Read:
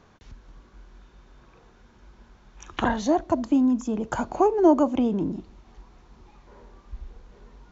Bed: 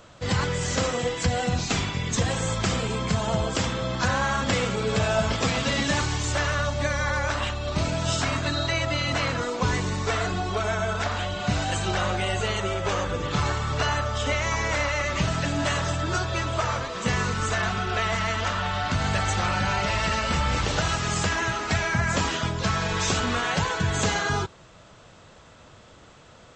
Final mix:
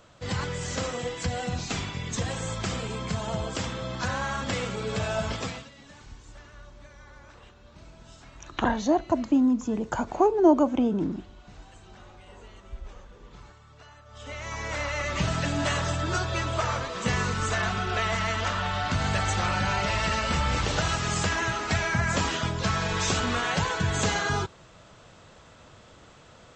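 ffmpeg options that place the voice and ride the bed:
-filter_complex "[0:a]adelay=5800,volume=-1dB[a];[1:a]volume=19dB,afade=t=out:st=5.34:d=0.35:silence=0.0944061,afade=t=in:st=14.05:d=1.26:silence=0.0595662[b];[a][b]amix=inputs=2:normalize=0"

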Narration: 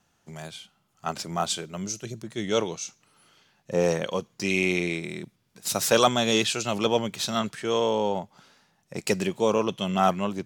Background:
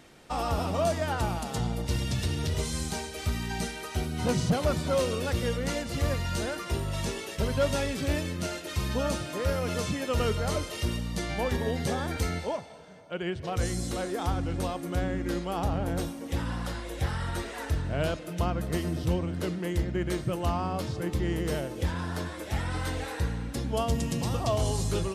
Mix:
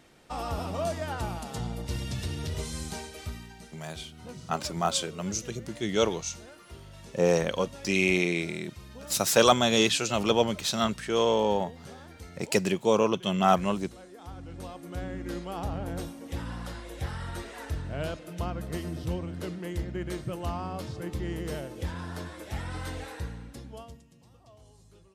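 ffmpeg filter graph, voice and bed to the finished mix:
-filter_complex "[0:a]adelay=3450,volume=0dB[a];[1:a]volume=8dB,afade=t=out:st=3.06:d=0.49:silence=0.237137,afade=t=in:st=14.19:d=1.17:silence=0.251189,afade=t=out:st=22.98:d=1.05:silence=0.0630957[b];[a][b]amix=inputs=2:normalize=0"

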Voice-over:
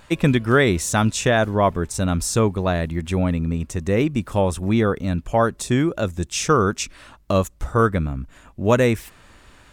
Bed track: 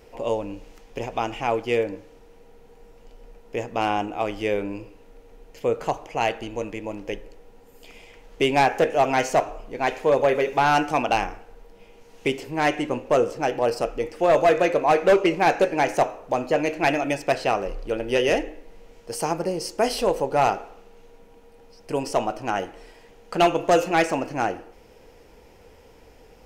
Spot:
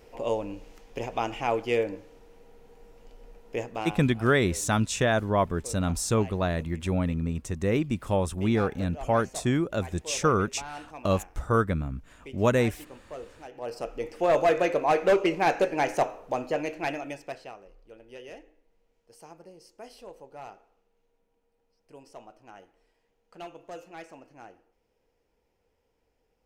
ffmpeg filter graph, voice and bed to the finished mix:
-filter_complex "[0:a]adelay=3750,volume=-6dB[a];[1:a]volume=13.5dB,afade=t=out:st=3.58:d=0.4:silence=0.125893,afade=t=in:st=13.5:d=0.66:silence=0.149624,afade=t=out:st=16.17:d=1.39:silence=0.112202[b];[a][b]amix=inputs=2:normalize=0"

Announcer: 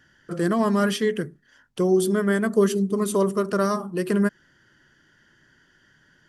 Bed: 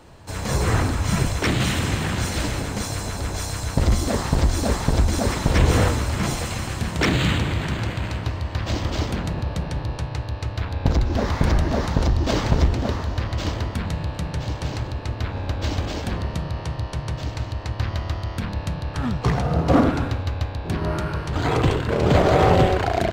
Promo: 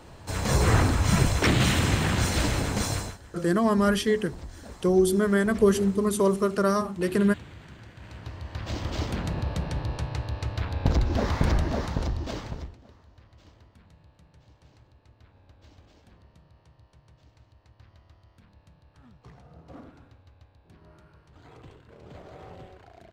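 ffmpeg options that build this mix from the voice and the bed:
-filter_complex "[0:a]adelay=3050,volume=-1dB[a];[1:a]volume=18dB,afade=t=out:st=2.92:d=0.26:silence=0.0841395,afade=t=in:st=7.94:d=1.43:silence=0.11885,afade=t=out:st=11.37:d=1.4:silence=0.0501187[b];[a][b]amix=inputs=2:normalize=0"

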